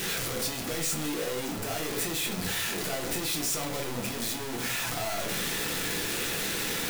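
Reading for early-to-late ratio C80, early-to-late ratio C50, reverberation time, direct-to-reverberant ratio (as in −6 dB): 13.0 dB, 8.5 dB, 0.55 s, 0.0 dB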